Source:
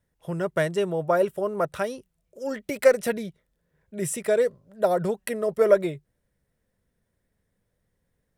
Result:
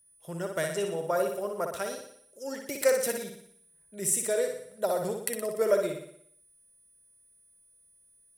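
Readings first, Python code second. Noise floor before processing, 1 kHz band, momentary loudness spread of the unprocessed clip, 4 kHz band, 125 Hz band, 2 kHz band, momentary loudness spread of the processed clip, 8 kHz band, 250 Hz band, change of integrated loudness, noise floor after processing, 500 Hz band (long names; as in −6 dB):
−77 dBFS, −5.5 dB, 14 LU, 0.0 dB, −8.5 dB, −5.0 dB, 14 LU, +6.0 dB, −7.5 dB, −4.5 dB, −63 dBFS, −5.5 dB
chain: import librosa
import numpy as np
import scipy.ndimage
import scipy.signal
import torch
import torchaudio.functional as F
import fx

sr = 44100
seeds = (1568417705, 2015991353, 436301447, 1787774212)

y = fx.bass_treble(x, sr, bass_db=-4, treble_db=12)
y = y + 10.0 ** (-54.0 / 20.0) * np.sin(2.0 * np.pi * 9900.0 * np.arange(len(y)) / sr)
y = fx.room_flutter(y, sr, wall_m=10.2, rt60_s=0.66)
y = y * librosa.db_to_amplitude(-7.0)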